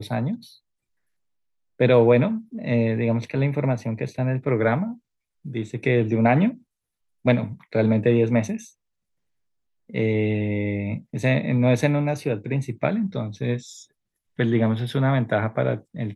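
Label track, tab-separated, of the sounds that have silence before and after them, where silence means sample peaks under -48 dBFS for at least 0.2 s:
1.800000	4.980000	sound
5.450000	6.620000	sound
7.250000	8.710000	sound
9.890000	13.850000	sound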